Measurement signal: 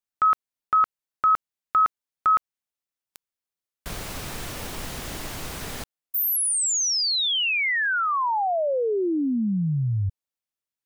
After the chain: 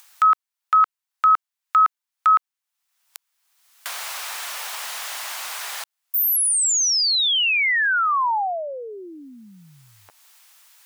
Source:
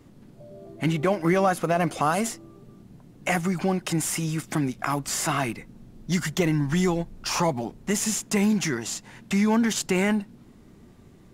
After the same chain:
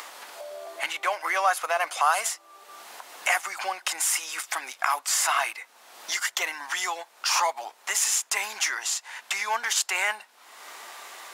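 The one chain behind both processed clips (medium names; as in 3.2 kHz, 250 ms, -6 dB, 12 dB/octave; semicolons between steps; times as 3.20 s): high-pass 800 Hz 24 dB/octave; upward compressor, threshold -30 dBFS; trim +4 dB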